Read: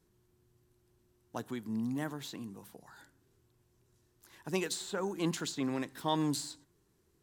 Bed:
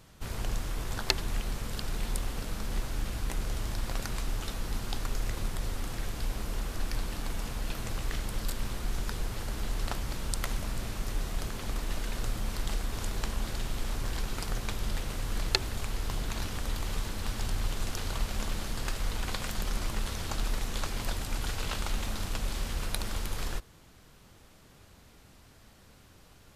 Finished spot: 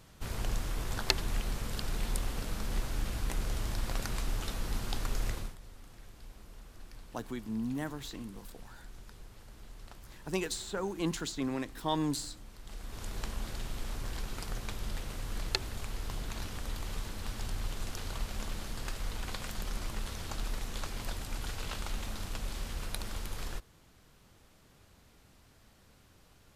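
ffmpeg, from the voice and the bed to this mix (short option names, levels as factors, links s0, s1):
-filter_complex "[0:a]adelay=5800,volume=1[s0];[1:a]volume=3.76,afade=t=out:st=5.29:d=0.27:silence=0.149624,afade=t=in:st=12.62:d=0.58:silence=0.237137[s1];[s0][s1]amix=inputs=2:normalize=0"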